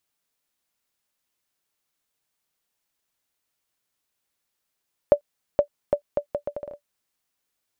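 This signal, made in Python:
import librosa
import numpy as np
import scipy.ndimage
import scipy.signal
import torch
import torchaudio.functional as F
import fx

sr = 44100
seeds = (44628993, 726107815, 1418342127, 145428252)

y = fx.bouncing_ball(sr, first_gap_s=0.47, ratio=0.72, hz=581.0, decay_ms=90.0, level_db=-4.5)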